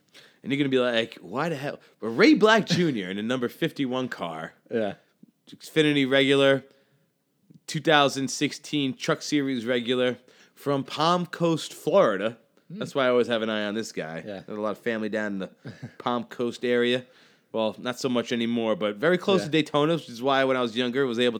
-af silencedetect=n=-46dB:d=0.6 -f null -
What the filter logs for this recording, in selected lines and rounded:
silence_start: 6.71
silence_end: 7.50 | silence_duration: 0.79